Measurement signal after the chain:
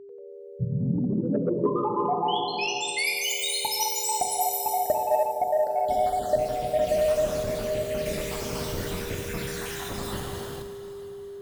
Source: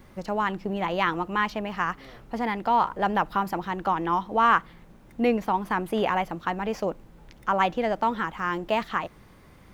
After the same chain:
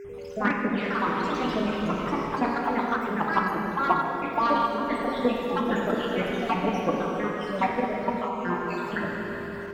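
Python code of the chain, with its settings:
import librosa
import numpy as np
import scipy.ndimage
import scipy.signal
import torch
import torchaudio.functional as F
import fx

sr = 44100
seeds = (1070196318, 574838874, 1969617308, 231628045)

p1 = fx.spec_dropout(x, sr, seeds[0], share_pct=74)
p2 = fx.rev_plate(p1, sr, seeds[1], rt60_s=3.0, hf_ratio=0.95, predelay_ms=0, drr_db=-2.0)
p3 = fx.level_steps(p2, sr, step_db=23)
p4 = p2 + (p3 * librosa.db_to_amplitude(1.5))
p5 = fx.low_shelf(p4, sr, hz=260.0, db=8.5)
p6 = p5 + 10.0 ** (-36.0 / 20.0) * np.sin(2.0 * np.pi * 400.0 * np.arange(len(p5)) / sr)
p7 = fx.high_shelf(p6, sr, hz=12000.0, db=-3.5)
p8 = 10.0 ** (-7.0 / 20.0) * np.tanh(p7 / 10.0 ** (-7.0 / 20.0))
p9 = p8 + fx.echo_single(p8, sr, ms=892, db=-22.5, dry=0)
p10 = fx.rider(p9, sr, range_db=4, speed_s=0.5)
p11 = fx.echo_pitch(p10, sr, ms=92, semitones=3, count=2, db_per_echo=-3.0)
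p12 = fx.highpass(p11, sr, hz=82.0, slope=6)
p13 = fx.hum_notches(p12, sr, base_hz=50, count=4)
y = p13 * librosa.db_to_amplitude(-4.5)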